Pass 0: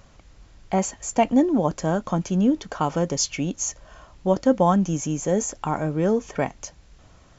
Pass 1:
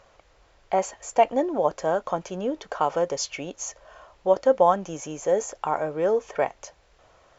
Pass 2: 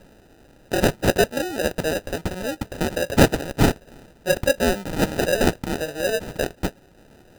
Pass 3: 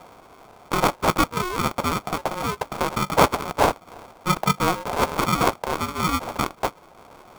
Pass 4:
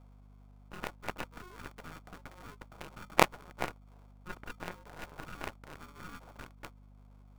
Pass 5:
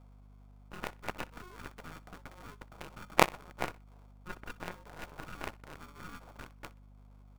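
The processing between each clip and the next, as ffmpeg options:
-af "lowpass=f=3.3k:p=1,lowshelf=f=340:t=q:w=1.5:g=-12"
-af "aexciter=amount=5.8:drive=8:freq=2.6k,acrusher=samples=40:mix=1:aa=0.000001,volume=-1dB"
-filter_complex "[0:a]asplit=2[a][b];[b]acompressor=threshold=-28dB:ratio=6,volume=2.5dB[c];[a][c]amix=inputs=2:normalize=0,aeval=exprs='val(0)*sin(2*PI*720*n/s)':c=same,volume=-1dB"
-af "aeval=exprs='0.891*(cos(1*acos(clip(val(0)/0.891,-1,1)))-cos(1*PI/2))+0.355*(cos(3*acos(clip(val(0)/0.891,-1,1)))-cos(3*PI/2))+0.02*(cos(5*acos(clip(val(0)/0.891,-1,1)))-cos(5*PI/2))+0.0141*(cos(8*acos(clip(val(0)/0.891,-1,1)))-cos(8*PI/2))':c=same,aeval=exprs='val(0)+0.00251*(sin(2*PI*50*n/s)+sin(2*PI*2*50*n/s)/2+sin(2*PI*3*50*n/s)/3+sin(2*PI*4*50*n/s)/4+sin(2*PI*5*50*n/s)/5)':c=same,volume=-3dB"
-af "aecho=1:1:62|124:0.0891|0.0285"

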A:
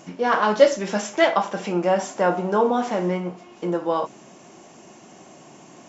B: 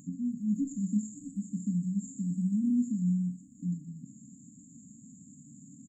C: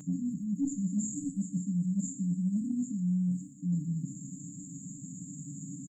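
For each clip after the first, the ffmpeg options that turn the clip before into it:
-filter_complex "[0:a]acrossover=split=3300[a][b];[b]acompressor=threshold=-42dB:ratio=4:attack=1:release=60[c];[a][c]amix=inputs=2:normalize=0,asplit=8[d][e][f][g][h][i][j][k];[e]adelay=123,afreqshift=150,volume=-9dB[l];[f]adelay=246,afreqshift=300,volume=-13.7dB[m];[g]adelay=369,afreqshift=450,volume=-18.5dB[n];[h]adelay=492,afreqshift=600,volume=-23.2dB[o];[i]adelay=615,afreqshift=750,volume=-27.9dB[p];[j]adelay=738,afreqshift=900,volume=-32.7dB[q];[k]adelay=861,afreqshift=1050,volume=-37.4dB[r];[d][l][m][n][o][p][q][r]amix=inputs=8:normalize=0,afftfilt=real='re*(1-between(b*sr/4096,300,6700))':imag='im*(1-between(b*sr/4096,300,6700))':win_size=4096:overlap=0.75"
-af "aecho=1:1:6.5:0.91,areverse,acompressor=threshold=-36dB:ratio=5,areverse,volume=7dB"

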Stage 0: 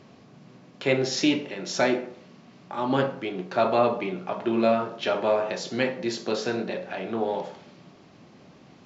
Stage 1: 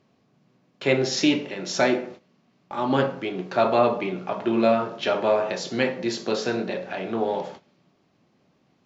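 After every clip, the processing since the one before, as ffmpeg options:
-af "agate=range=-15dB:threshold=-42dB:ratio=16:detection=peak,volume=2dB"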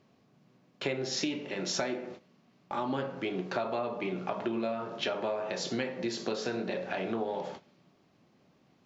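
-af "acompressor=threshold=-28dB:ratio=12,volume=-1dB"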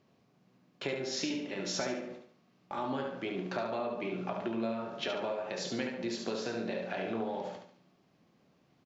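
-af "aecho=1:1:71|142|213|284:0.501|0.185|0.0686|0.0254,volume=-3.5dB"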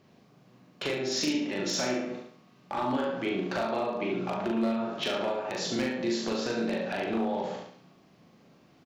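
-filter_complex "[0:a]asplit=2[a][b];[b]acompressor=threshold=-42dB:ratio=12,volume=-1dB[c];[a][c]amix=inputs=2:normalize=0,aeval=exprs='0.0596*(abs(mod(val(0)/0.0596+3,4)-2)-1)':c=same,asplit=2[d][e];[e]adelay=40,volume=-2dB[f];[d][f]amix=inputs=2:normalize=0,volume=1.5dB"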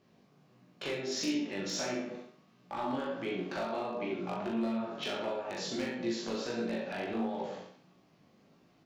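-af "flanger=delay=16.5:depth=4.8:speed=1.5,volume=-2.5dB"

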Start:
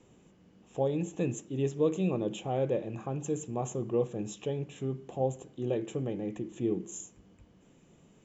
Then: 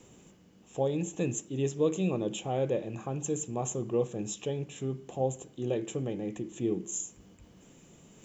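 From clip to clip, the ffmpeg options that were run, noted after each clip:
-af "highshelf=f=4.6k:g=10.5,areverse,acompressor=mode=upward:threshold=-49dB:ratio=2.5,areverse"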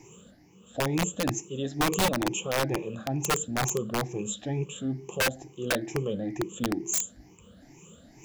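-af "afftfilt=real='re*pow(10,19/40*sin(2*PI*(0.74*log(max(b,1)*sr/1024/100)/log(2)-(2.2)*(pts-256)/sr)))':imag='im*pow(10,19/40*sin(2*PI*(0.74*log(max(b,1)*sr/1024/100)/log(2)-(2.2)*(pts-256)/sr)))':win_size=1024:overlap=0.75,aeval=exprs='(mod(9.44*val(0)+1,2)-1)/9.44':c=same"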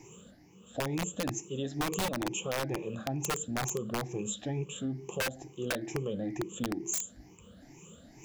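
-af "acompressor=threshold=-29dB:ratio=6,volume=-1dB"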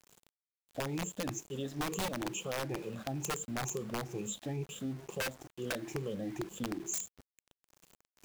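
-af "aeval=exprs='val(0)*gte(abs(val(0)),0.00562)':c=same,volume=-3.5dB"

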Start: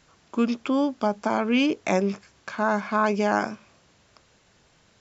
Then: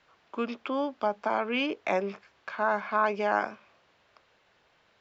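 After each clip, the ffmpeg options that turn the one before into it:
-filter_complex "[0:a]acrossover=split=400 4200:gain=0.251 1 0.0708[a][b][c];[a][b][c]amix=inputs=3:normalize=0,volume=-2dB"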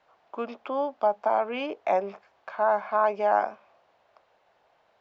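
-af "equalizer=f=720:w=1.1:g=14,volume=-7dB"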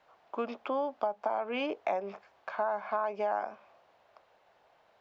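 -af "acompressor=threshold=-28dB:ratio=6"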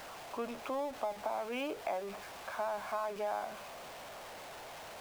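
-af "aeval=exprs='val(0)+0.5*0.0158*sgn(val(0))':c=same,volume=-6.5dB"

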